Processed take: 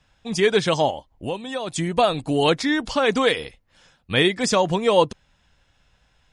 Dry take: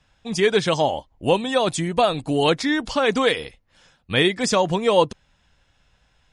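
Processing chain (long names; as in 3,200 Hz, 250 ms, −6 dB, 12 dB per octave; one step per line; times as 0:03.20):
0:00.90–0:01.76: downward compressor 2 to 1, threshold −32 dBFS, peak gain reduction 10.5 dB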